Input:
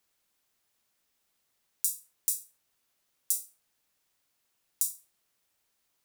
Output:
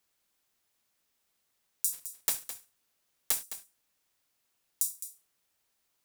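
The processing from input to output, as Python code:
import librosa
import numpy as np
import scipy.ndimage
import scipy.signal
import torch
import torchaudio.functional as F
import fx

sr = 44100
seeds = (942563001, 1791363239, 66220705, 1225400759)

y = fx.block_float(x, sr, bits=3, at=(1.92, 3.42), fade=0.02)
y = y + 10.0 ** (-12.0 / 20.0) * np.pad(y, (int(211 * sr / 1000.0), 0))[:len(y)]
y = y * librosa.db_to_amplitude(-1.0)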